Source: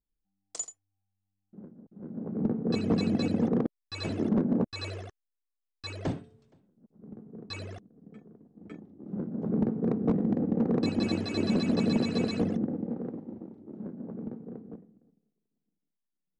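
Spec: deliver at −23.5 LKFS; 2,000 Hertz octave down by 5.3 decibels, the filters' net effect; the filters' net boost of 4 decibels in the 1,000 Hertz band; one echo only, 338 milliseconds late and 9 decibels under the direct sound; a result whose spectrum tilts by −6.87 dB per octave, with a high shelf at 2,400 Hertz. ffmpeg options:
ffmpeg -i in.wav -af "equalizer=frequency=1000:width_type=o:gain=7.5,equalizer=frequency=2000:width_type=o:gain=-6,highshelf=frequency=2400:gain=-5,aecho=1:1:338:0.355,volume=6dB" out.wav

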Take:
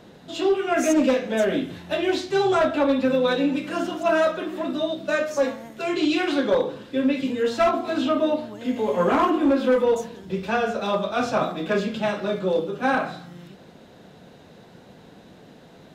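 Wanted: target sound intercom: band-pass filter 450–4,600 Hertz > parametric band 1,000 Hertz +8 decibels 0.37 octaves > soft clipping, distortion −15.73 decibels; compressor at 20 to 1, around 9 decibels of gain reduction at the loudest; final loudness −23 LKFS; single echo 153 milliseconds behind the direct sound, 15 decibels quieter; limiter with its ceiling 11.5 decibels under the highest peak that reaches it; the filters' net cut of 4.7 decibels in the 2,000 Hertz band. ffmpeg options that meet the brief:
ffmpeg -i in.wav -af "equalizer=frequency=2000:width_type=o:gain=-7.5,acompressor=threshold=-25dB:ratio=20,alimiter=level_in=4dB:limit=-24dB:level=0:latency=1,volume=-4dB,highpass=450,lowpass=4600,equalizer=frequency=1000:width_type=o:width=0.37:gain=8,aecho=1:1:153:0.178,asoftclip=threshold=-32dB,volume=16.5dB" out.wav

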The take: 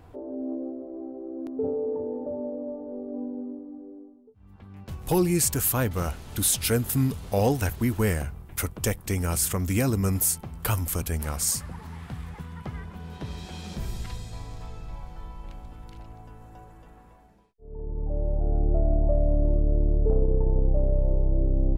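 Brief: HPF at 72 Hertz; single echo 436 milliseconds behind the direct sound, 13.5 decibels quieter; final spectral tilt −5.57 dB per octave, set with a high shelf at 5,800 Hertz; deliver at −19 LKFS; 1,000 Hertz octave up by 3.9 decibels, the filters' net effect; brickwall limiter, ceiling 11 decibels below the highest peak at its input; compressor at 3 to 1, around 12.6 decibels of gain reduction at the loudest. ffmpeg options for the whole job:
ffmpeg -i in.wav -af "highpass=72,equalizer=frequency=1000:width_type=o:gain=5.5,highshelf=frequency=5800:gain=-8,acompressor=threshold=-35dB:ratio=3,alimiter=level_in=5dB:limit=-24dB:level=0:latency=1,volume=-5dB,aecho=1:1:436:0.211,volume=20.5dB" out.wav

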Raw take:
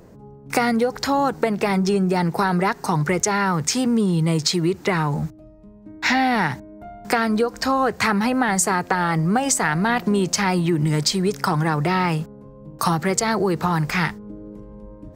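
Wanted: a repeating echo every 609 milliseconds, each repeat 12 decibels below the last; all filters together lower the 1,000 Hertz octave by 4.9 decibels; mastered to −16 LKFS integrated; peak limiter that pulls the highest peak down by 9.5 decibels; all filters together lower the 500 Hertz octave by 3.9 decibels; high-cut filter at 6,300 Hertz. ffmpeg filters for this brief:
ffmpeg -i in.wav -af "lowpass=6300,equalizer=frequency=500:width_type=o:gain=-4,equalizer=frequency=1000:width_type=o:gain=-5,alimiter=limit=-15dB:level=0:latency=1,aecho=1:1:609|1218|1827:0.251|0.0628|0.0157,volume=8.5dB" out.wav

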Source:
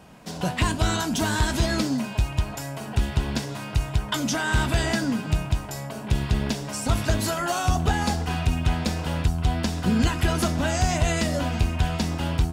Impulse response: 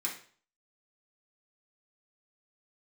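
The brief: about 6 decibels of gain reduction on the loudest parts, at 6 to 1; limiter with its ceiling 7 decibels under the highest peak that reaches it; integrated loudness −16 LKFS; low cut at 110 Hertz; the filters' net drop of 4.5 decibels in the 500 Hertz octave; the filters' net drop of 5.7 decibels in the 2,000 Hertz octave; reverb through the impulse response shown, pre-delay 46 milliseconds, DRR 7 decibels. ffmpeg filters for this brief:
-filter_complex "[0:a]highpass=110,equalizer=frequency=500:width_type=o:gain=-6,equalizer=frequency=2000:width_type=o:gain=-7.5,acompressor=threshold=-28dB:ratio=6,alimiter=level_in=0.5dB:limit=-24dB:level=0:latency=1,volume=-0.5dB,asplit=2[link_01][link_02];[1:a]atrim=start_sample=2205,adelay=46[link_03];[link_02][link_03]afir=irnorm=-1:irlink=0,volume=-10.5dB[link_04];[link_01][link_04]amix=inputs=2:normalize=0,volume=18dB"

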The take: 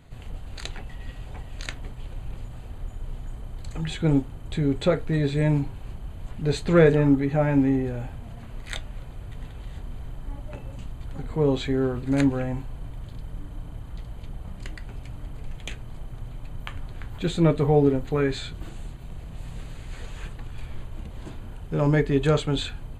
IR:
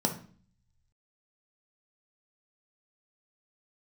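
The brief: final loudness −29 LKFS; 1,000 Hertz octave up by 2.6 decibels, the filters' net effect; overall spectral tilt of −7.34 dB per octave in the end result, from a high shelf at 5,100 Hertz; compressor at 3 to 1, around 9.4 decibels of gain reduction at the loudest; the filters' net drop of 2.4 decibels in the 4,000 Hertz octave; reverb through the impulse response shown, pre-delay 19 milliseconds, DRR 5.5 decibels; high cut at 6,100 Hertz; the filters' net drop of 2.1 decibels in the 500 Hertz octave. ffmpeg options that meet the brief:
-filter_complex "[0:a]lowpass=6100,equalizer=frequency=500:width_type=o:gain=-3.5,equalizer=frequency=1000:width_type=o:gain=5,equalizer=frequency=4000:width_type=o:gain=-4,highshelf=frequency=5100:gain=4,acompressor=threshold=-26dB:ratio=3,asplit=2[link_01][link_02];[1:a]atrim=start_sample=2205,adelay=19[link_03];[link_02][link_03]afir=irnorm=-1:irlink=0,volume=-13.5dB[link_04];[link_01][link_04]amix=inputs=2:normalize=0,volume=1.5dB"

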